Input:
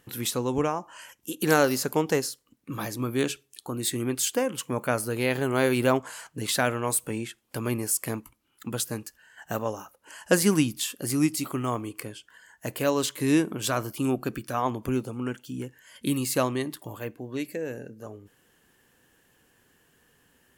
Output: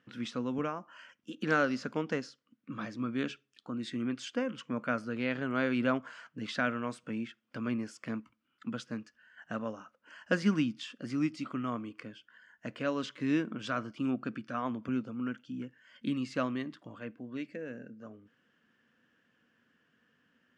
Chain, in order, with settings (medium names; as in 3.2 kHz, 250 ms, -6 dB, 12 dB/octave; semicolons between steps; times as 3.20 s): cabinet simulation 140–4700 Hz, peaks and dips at 230 Hz +8 dB, 390 Hz -7 dB, 840 Hz -9 dB, 1.4 kHz +6 dB, 4.1 kHz -7 dB; trim -7 dB